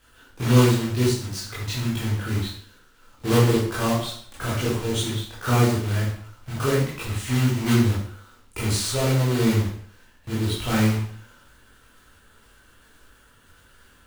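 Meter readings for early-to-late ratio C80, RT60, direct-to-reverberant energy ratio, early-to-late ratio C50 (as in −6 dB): 6.5 dB, 0.60 s, −8.5 dB, 2.0 dB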